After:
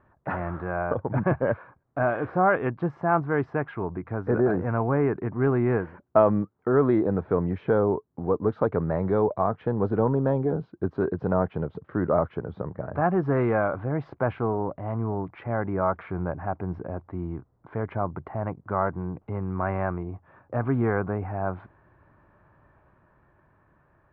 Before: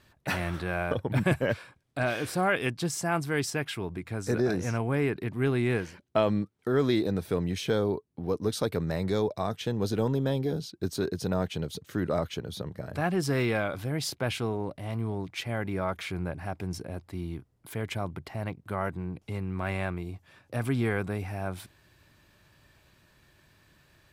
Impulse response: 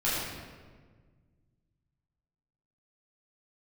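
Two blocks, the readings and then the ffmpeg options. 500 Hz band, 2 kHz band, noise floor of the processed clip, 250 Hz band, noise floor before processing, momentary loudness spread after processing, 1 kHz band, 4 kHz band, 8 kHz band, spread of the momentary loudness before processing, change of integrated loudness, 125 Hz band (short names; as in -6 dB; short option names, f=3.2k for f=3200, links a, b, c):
+5.5 dB, -0.5 dB, -65 dBFS, +3.5 dB, -65 dBFS, 10 LU, +7.0 dB, under -20 dB, under -40 dB, 10 LU, +4.0 dB, +2.5 dB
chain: -af "lowpass=f=1.2k:w=0.5412,lowpass=f=1.2k:w=1.3066,tiltshelf=f=870:g=-6,dynaudnorm=f=400:g=9:m=3dB,volume=5.5dB"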